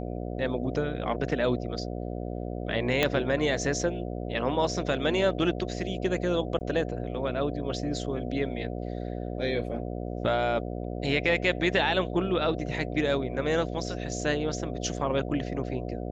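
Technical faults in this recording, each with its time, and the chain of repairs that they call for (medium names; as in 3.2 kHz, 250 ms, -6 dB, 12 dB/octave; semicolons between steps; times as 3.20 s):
buzz 60 Hz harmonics 12 -34 dBFS
3.03 s: pop -9 dBFS
6.59–6.61 s: dropout 19 ms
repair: de-click; de-hum 60 Hz, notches 12; interpolate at 6.59 s, 19 ms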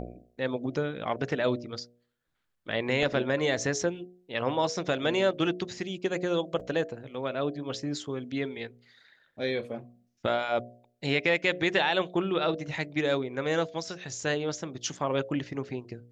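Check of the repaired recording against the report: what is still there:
3.03 s: pop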